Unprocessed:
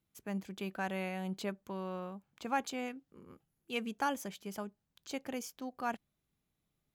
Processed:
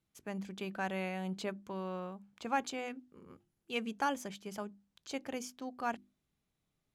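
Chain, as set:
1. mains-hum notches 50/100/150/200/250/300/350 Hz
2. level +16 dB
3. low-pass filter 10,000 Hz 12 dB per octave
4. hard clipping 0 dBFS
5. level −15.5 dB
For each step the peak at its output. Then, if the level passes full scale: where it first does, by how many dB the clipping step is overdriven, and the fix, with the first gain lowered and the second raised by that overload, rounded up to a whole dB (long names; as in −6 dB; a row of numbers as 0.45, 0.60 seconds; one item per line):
−21.5, −5.5, −5.5, −5.5, −21.0 dBFS
no step passes full scale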